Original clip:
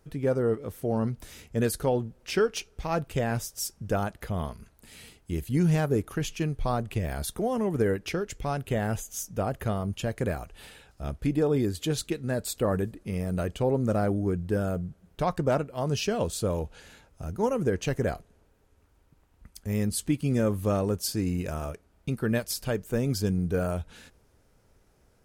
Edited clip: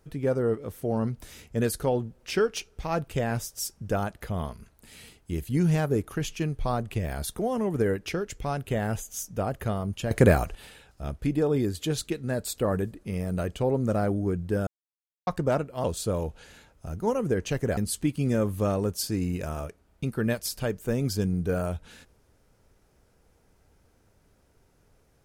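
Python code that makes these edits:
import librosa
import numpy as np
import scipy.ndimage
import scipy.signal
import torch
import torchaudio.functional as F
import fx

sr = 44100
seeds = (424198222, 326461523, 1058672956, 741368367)

y = fx.edit(x, sr, fx.clip_gain(start_s=10.11, length_s=0.44, db=11.0),
    fx.silence(start_s=14.67, length_s=0.6),
    fx.cut(start_s=15.84, length_s=0.36),
    fx.cut(start_s=18.13, length_s=1.69), tone=tone)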